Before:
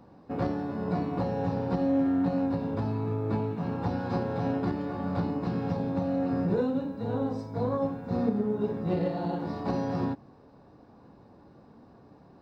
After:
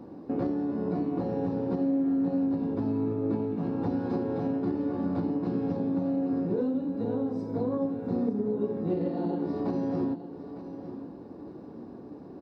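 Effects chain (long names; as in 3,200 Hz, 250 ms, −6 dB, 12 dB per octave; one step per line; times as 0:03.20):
parametric band 320 Hz +14 dB 1.5 octaves
downward compressor 2.5 to 1, threshold −31 dBFS, peak gain reduction 13.5 dB
repeating echo 906 ms, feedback 35%, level −12.5 dB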